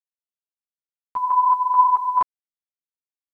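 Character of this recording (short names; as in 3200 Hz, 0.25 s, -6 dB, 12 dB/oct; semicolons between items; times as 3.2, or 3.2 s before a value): chopped level 2.3 Hz, depth 65%, duty 50%; a quantiser's noise floor 12-bit, dither none; a shimmering, thickened sound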